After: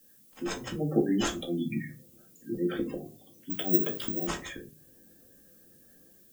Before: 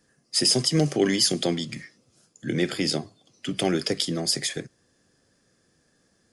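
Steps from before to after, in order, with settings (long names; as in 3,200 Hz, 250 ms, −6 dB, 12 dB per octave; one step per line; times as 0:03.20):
running median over 9 samples
notch filter 2,100 Hz, Q 30
gate on every frequency bin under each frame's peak −15 dB strong
mains-hum notches 60/120 Hz
volume swells 304 ms
automatic gain control gain up to 8 dB
background noise violet −55 dBFS
convolution reverb RT60 0.35 s, pre-delay 4 ms, DRR 0.5 dB
0:03.50–0:04.27: bad sample-rate conversion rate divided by 2×, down none, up zero stuff
level −6.5 dB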